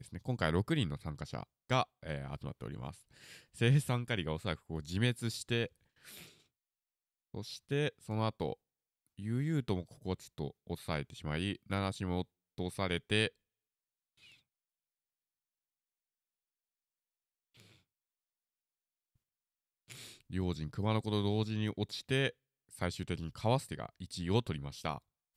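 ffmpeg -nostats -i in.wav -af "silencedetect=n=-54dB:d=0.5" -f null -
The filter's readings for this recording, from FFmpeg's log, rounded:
silence_start: 6.32
silence_end: 7.34 | silence_duration: 1.02
silence_start: 8.54
silence_end: 9.18 | silence_duration: 0.64
silence_start: 13.29
silence_end: 14.22 | silence_duration: 0.93
silence_start: 14.34
silence_end: 17.56 | silence_duration: 3.22
silence_start: 17.76
silence_end: 19.89 | silence_duration: 2.13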